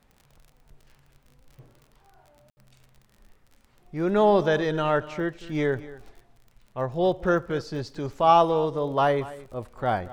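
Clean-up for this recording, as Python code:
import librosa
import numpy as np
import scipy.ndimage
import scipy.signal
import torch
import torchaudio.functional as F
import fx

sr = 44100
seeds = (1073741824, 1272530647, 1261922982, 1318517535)

y = fx.fix_declick_ar(x, sr, threshold=6.5)
y = fx.fix_ambience(y, sr, seeds[0], print_start_s=3.35, print_end_s=3.85, start_s=2.5, end_s=2.57)
y = fx.fix_echo_inverse(y, sr, delay_ms=230, level_db=-17.5)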